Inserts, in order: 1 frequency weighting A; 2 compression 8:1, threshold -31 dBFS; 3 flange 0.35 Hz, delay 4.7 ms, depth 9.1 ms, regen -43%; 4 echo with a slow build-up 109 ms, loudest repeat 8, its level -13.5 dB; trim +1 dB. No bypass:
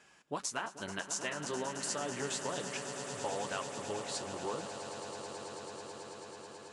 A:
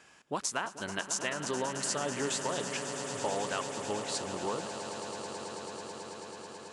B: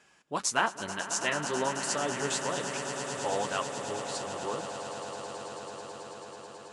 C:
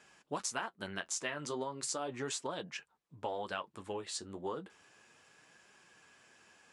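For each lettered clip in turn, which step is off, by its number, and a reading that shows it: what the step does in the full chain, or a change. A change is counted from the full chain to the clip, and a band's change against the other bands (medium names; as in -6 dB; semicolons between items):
3, loudness change +4.0 LU; 2, mean gain reduction 4.0 dB; 4, echo-to-direct -2.0 dB to none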